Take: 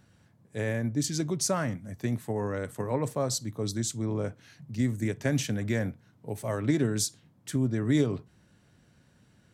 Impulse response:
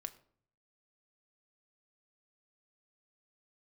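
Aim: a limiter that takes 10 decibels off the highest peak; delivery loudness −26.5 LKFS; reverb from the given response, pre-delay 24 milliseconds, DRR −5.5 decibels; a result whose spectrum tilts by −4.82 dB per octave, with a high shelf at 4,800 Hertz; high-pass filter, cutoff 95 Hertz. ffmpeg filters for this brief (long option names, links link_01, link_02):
-filter_complex "[0:a]highpass=95,highshelf=frequency=4800:gain=4.5,alimiter=limit=-23.5dB:level=0:latency=1,asplit=2[link_01][link_02];[1:a]atrim=start_sample=2205,adelay=24[link_03];[link_02][link_03]afir=irnorm=-1:irlink=0,volume=8.5dB[link_04];[link_01][link_04]amix=inputs=2:normalize=0,volume=0.5dB"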